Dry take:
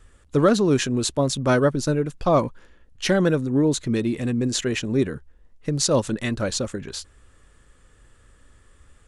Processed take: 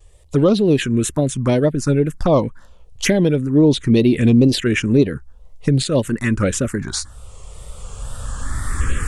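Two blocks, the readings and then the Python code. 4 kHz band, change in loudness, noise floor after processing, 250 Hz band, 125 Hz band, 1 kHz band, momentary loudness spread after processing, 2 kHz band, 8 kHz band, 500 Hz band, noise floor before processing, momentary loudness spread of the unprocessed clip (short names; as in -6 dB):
+2.5 dB, +5.0 dB, -44 dBFS, +7.0 dB, +7.5 dB, -1.0 dB, 15 LU, +4.0 dB, +1.5 dB, +4.0 dB, -56 dBFS, 10 LU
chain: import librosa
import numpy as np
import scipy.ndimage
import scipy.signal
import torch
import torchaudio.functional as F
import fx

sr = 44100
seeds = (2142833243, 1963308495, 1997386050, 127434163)

y = fx.recorder_agc(x, sr, target_db=-8.5, rise_db_per_s=11.0, max_gain_db=30)
y = fx.wow_flutter(y, sr, seeds[0], rate_hz=2.1, depth_cents=98.0)
y = fx.env_phaser(y, sr, low_hz=240.0, high_hz=1700.0, full_db=-12.0)
y = y * librosa.db_to_amplitude(4.0)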